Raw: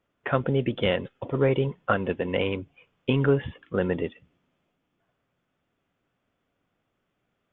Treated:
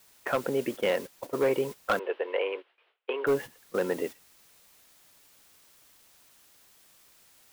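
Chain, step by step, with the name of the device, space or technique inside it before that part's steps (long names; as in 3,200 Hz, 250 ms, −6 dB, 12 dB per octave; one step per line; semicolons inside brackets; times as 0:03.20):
aircraft radio (band-pass filter 340–2,400 Hz; hard clipping −19 dBFS, distortion −16 dB; white noise bed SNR 16 dB; noise gate −35 dBFS, range −11 dB)
0:01.99–0:03.27: elliptic band-pass filter 400–3,100 Hz, stop band 40 dB
noise gate with hold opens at −57 dBFS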